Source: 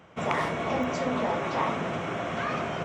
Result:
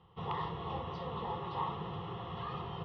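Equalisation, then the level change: LPF 3200 Hz 24 dB/oct; fixed phaser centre 630 Hz, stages 4; fixed phaser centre 2300 Hz, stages 6; 0.0 dB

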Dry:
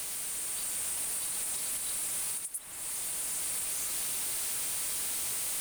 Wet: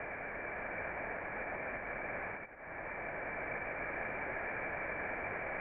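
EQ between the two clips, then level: rippled Chebyshev low-pass 2400 Hz, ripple 9 dB; +13.5 dB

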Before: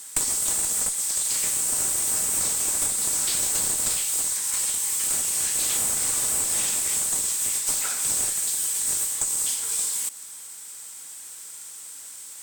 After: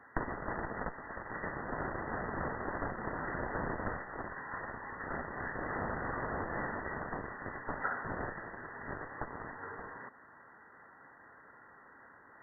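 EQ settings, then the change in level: brick-wall FIR low-pass 2000 Hz; +2.5 dB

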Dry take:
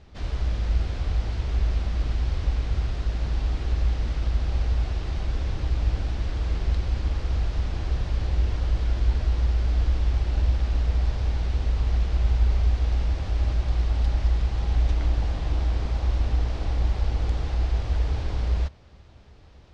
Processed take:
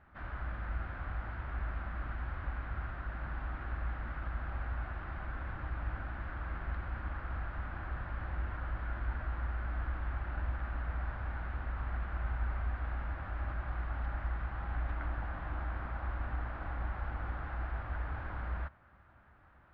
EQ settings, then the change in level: ladder low-pass 1700 Hz, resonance 55%; tilt +2 dB/oct; bell 440 Hz -10 dB 0.45 oct; +4.0 dB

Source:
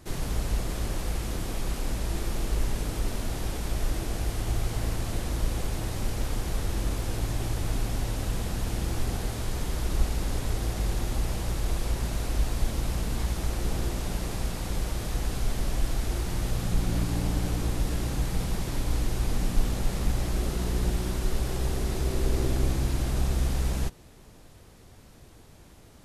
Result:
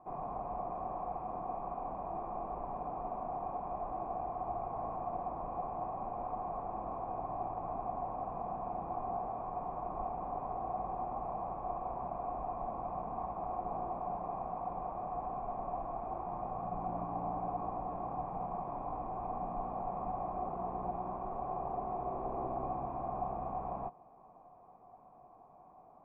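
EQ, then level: vocal tract filter a; air absorption 480 m; resonant low shelf 120 Hz -9 dB, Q 1.5; +13.5 dB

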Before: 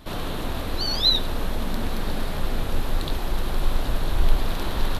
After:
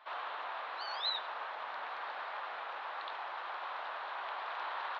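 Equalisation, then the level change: HPF 880 Hz 24 dB/oct; air absorption 140 m; tape spacing loss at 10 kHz 41 dB; +4.0 dB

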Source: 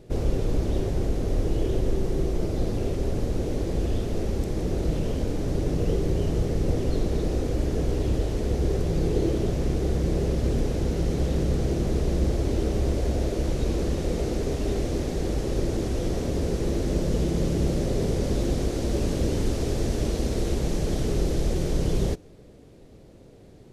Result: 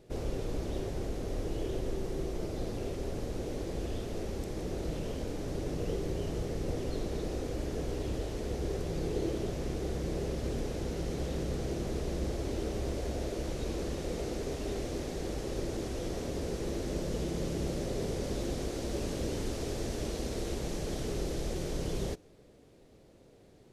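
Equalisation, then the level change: low shelf 310 Hz -7 dB; -5.0 dB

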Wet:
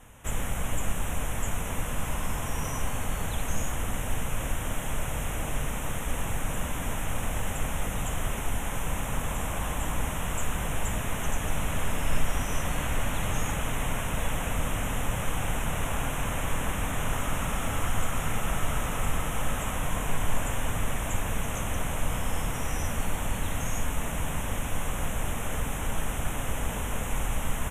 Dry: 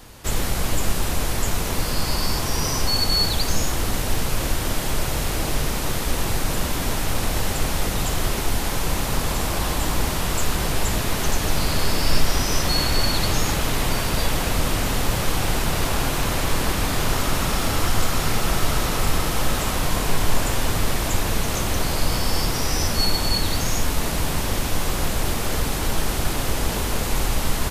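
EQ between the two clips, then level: Butterworth band-stop 4600 Hz, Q 1.4; LPF 12000 Hz 12 dB/oct; bell 360 Hz -8 dB 0.44 oct; -6.5 dB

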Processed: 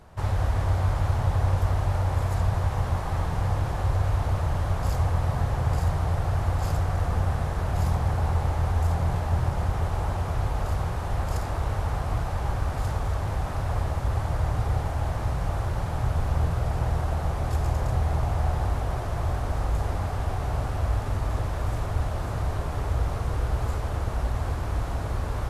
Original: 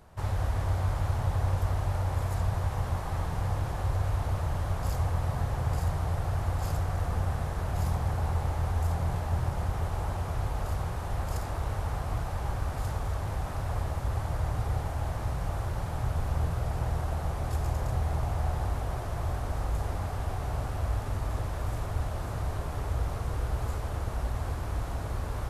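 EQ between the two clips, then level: high shelf 9800 Hz -7 dB; +4.5 dB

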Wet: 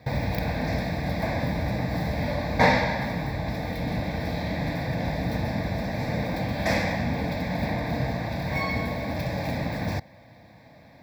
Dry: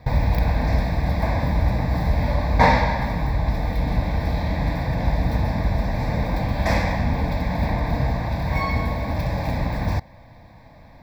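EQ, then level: HPF 110 Hz 12 dB/oct; low shelf 210 Hz -3 dB; bell 1000 Hz -7.5 dB 0.63 oct; 0.0 dB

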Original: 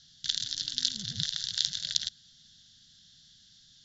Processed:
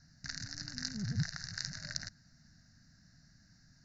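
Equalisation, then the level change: Butterworth band-stop 3300 Hz, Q 0.93; air absorption 210 m; +7.0 dB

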